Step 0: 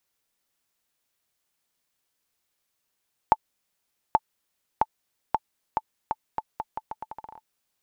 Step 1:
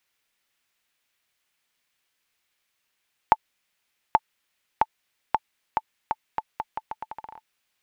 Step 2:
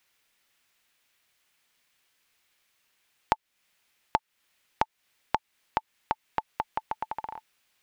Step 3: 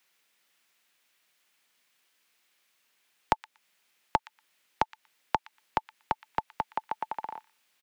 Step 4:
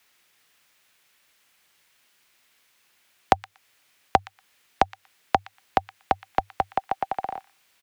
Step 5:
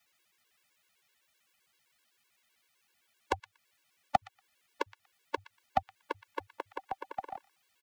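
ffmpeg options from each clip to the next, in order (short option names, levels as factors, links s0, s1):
-af "equalizer=f=2300:w=0.72:g=9.5,volume=0.891"
-af "acompressor=threshold=0.0282:ratio=2.5,volume=1.68"
-filter_complex "[0:a]acrossover=split=130|380|1400[s0][s1][s2][s3];[s0]acrusher=bits=4:dc=4:mix=0:aa=0.000001[s4];[s3]asplit=2[s5][s6];[s6]adelay=119,lowpass=f=4300:p=1,volume=0.224,asplit=2[s7][s8];[s8]adelay=119,lowpass=f=4300:p=1,volume=0.16[s9];[s5][s7][s9]amix=inputs=3:normalize=0[s10];[s4][s1][s2][s10]amix=inputs=4:normalize=0"
-af "afreqshift=-100,volume=2.24"
-af "afftfilt=real='re*gt(sin(2*PI*7.8*pts/sr)*(1-2*mod(floor(b*sr/1024/290),2)),0)':imag='im*gt(sin(2*PI*7.8*pts/sr)*(1-2*mod(floor(b*sr/1024/290),2)),0)':win_size=1024:overlap=0.75,volume=0.501"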